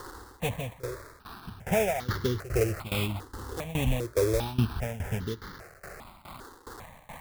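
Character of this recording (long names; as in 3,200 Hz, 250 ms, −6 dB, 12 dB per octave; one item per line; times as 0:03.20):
a quantiser's noise floor 8 bits, dither triangular
tremolo saw down 2.4 Hz, depth 90%
aliases and images of a low sample rate 3,000 Hz, jitter 20%
notches that jump at a steady rate 2.5 Hz 640–2,500 Hz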